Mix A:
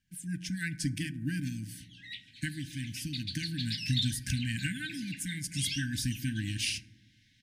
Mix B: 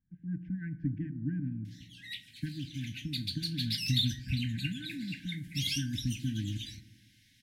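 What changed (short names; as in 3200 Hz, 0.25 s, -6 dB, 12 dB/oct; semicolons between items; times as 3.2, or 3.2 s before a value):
speech: add Bessel low-pass 830 Hz, order 4; background: remove air absorption 69 m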